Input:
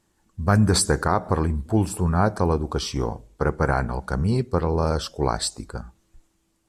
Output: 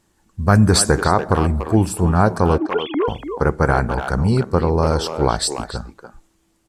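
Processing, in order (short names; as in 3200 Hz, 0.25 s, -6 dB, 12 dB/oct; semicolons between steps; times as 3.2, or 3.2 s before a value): 2.58–3.08 sine-wave speech; speakerphone echo 0.29 s, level -7 dB; gain +5 dB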